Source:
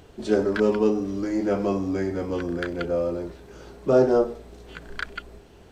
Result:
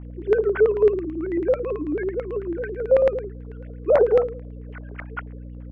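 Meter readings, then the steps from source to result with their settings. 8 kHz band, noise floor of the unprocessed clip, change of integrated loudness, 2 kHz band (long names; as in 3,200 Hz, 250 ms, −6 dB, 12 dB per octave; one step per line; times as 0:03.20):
can't be measured, −49 dBFS, +2.5 dB, −0.5 dB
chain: three sine waves on the formant tracks
mains hum 60 Hz, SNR 10 dB
auto-filter low-pass square 9.1 Hz 560–2,000 Hz
level −2 dB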